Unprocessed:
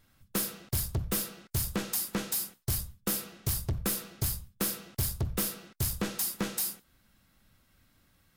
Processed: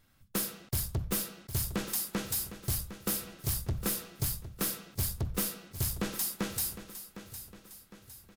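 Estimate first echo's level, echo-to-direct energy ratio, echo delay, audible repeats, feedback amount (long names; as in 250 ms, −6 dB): −12.5 dB, −11.5 dB, 758 ms, 4, 47%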